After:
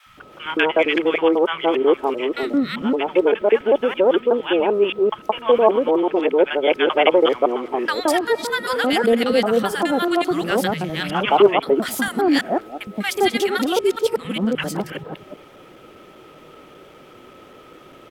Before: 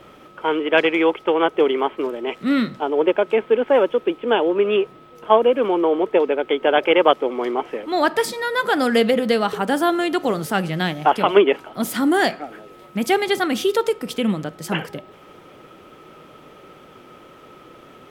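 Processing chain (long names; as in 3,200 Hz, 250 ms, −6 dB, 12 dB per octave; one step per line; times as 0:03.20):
reversed piece by piece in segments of 197 ms
three-band delay without the direct sound highs, lows, mids 60/170 ms, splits 160/1,100 Hz
level +1.5 dB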